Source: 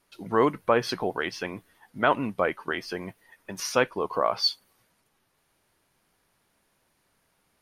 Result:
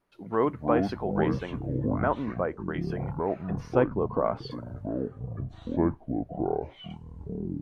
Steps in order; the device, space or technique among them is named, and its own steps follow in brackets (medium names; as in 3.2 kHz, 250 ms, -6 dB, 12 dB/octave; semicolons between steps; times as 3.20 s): 2.01–2.74 s: low-pass 1.6 kHz 12 dB/octave; 3.50–4.51 s: tilt EQ -3.5 dB/octave; through cloth (treble shelf 2.7 kHz -16.5 dB); ever faster or slower copies 147 ms, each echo -7 st, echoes 3; trim -2.5 dB